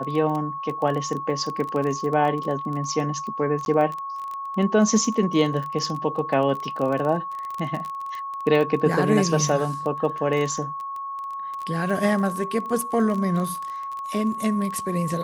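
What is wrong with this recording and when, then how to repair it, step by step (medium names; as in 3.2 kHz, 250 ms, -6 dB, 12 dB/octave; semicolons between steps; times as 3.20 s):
crackle 21 per s -27 dBFS
whine 1.1 kHz -29 dBFS
3.65–3.66 s: dropout 11 ms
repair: de-click; band-stop 1.1 kHz, Q 30; interpolate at 3.65 s, 11 ms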